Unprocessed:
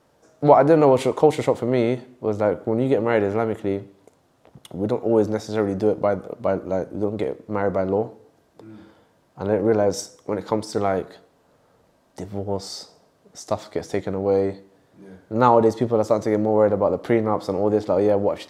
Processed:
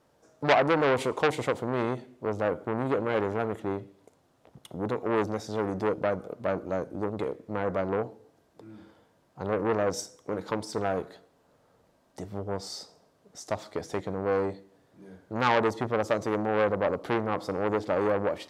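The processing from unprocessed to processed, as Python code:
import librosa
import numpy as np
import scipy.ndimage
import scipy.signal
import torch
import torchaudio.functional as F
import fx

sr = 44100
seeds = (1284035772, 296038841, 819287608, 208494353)

y = fx.transformer_sat(x, sr, knee_hz=1900.0)
y = y * librosa.db_to_amplitude(-5.0)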